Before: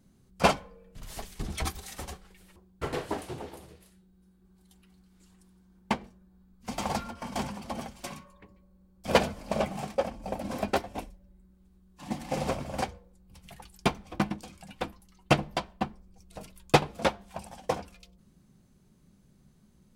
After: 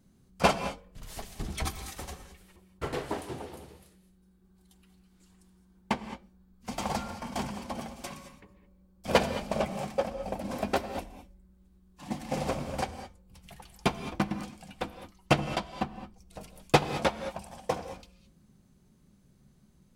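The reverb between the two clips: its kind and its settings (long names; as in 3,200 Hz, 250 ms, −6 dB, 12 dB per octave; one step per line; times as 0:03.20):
reverb whose tail is shaped and stops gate 240 ms rising, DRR 10.5 dB
level −1 dB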